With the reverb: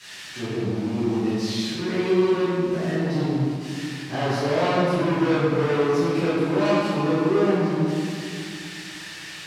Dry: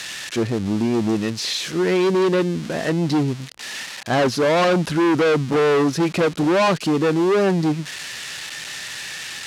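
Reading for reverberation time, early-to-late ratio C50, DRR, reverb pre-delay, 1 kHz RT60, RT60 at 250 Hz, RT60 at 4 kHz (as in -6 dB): 2.3 s, -5.0 dB, -17.5 dB, 3 ms, 2.2 s, 3.2 s, 1.3 s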